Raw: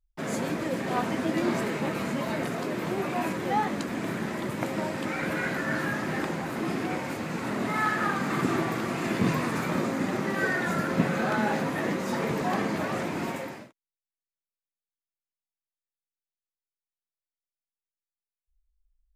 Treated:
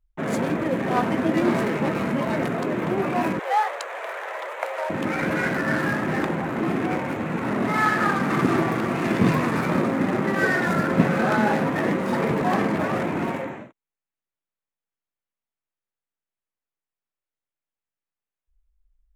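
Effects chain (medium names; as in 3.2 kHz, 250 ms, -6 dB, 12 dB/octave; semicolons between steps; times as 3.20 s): local Wiener filter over 9 samples; 3.39–4.90 s: steep high-pass 490 Hz 48 dB/octave; trim +6 dB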